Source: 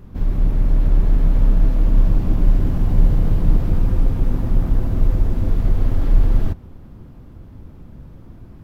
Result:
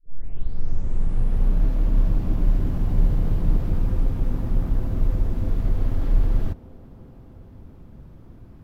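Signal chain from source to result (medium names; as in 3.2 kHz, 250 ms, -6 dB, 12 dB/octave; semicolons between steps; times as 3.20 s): tape start-up on the opening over 1.63 s; feedback echo behind a band-pass 321 ms, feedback 81%, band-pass 490 Hz, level -19 dB; trim -5 dB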